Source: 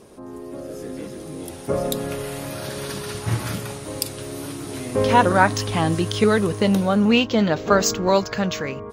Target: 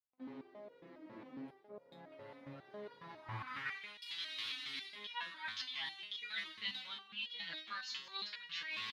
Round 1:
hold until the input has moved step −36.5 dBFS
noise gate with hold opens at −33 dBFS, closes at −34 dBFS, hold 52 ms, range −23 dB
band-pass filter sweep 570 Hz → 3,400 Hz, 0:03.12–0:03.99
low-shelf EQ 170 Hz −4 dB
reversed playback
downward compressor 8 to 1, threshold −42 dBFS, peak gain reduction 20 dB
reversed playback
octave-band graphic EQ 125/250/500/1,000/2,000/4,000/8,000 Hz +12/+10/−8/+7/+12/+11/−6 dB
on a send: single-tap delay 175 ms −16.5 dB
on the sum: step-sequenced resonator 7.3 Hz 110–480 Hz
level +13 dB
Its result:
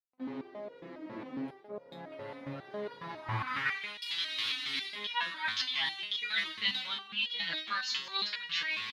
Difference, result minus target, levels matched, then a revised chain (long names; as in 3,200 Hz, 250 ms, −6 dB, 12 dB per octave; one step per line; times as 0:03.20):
downward compressor: peak gain reduction −10 dB
hold until the input has moved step −36.5 dBFS
noise gate with hold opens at −33 dBFS, closes at −34 dBFS, hold 52 ms, range −23 dB
band-pass filter sweep 570 Hz → 3,400 Hz, 0:03.12–0:03.99
low-shelf EQ 170 Hz −4 dB
reversed playback
downward compressor 8 to 1, threshold −53.5 dBFS, peak gain reduction 30.5 dB
reversed playback
octave-band graphic EQ 125/250/500/1,000/2,000/4,000/8,000 Hz +12/+10/−8/+7/+12/+11/−6 dB
on a send: single-tap delay 175 ms −16.5 dB
on the sum: step-sequenced resonator 7.3 Hz 110–480 Hz
level +13 dB